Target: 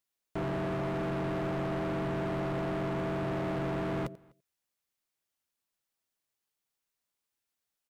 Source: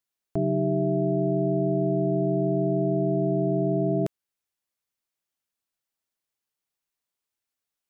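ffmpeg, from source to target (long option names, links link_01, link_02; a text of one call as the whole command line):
ffmpeg -i in.wav -filter_complex "[0:a]asplit=3[link_01][link_02][link_03];[link_02]asetrate=33038,aresample=44100,atempo=1.33484,volume=-13dB[link_04];[link_03]asetrate=35002,aresample=44100,atempo=1.25992,volume=-16dB[link_05];[link_01][link_04][link_05]amix=inputs=3:normalize=0,asplit=2[link_06][link_07];[link_07]aecho=0:1:88:0.075[link_08];[link_06][link_08]amix=inputs=2:normalize=0,volume=31.5dB,asoftclip=hard,volume=-31.5dB,asplit=2[link_09][link_10];[link_10]adelay=250.7,volume=-27dB,highshelf=frequency=4000:gain=-5.64[link_11];[link_09][link_11]amix=inputs=2:normalize=0" out.wav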